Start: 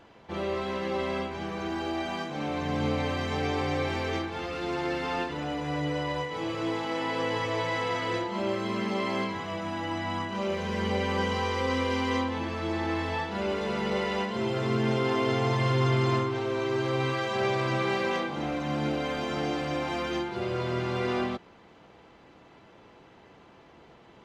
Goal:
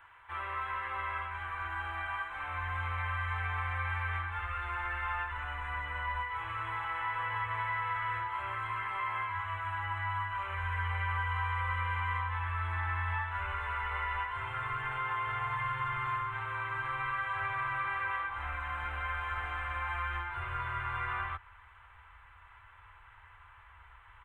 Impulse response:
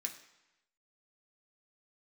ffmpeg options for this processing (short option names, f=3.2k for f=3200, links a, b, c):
-filter_complex "[0:a]firequalizer=gain_entry='entry(100,0);entry(160,-28);entry(330,-19);entry(650,-11);entry(960,8);entry(1500,12);entry(3500,-2);entry(5100,-27);entry(8300,5)':delay=0.05:min_phase=1,acrossover=split=730|2500[a][b][c];[a]acompressor=threshold=-37dB:ratio=4[d];[b]acompressor=threshold=-27dB:ratio=4[e];[c]acompressor=threshold=-50dB:ratio=4[f];[d][e][f]amix=inputs=3:normalize=0,asubboost=boost=12:cutoff=60,volume=-6dB"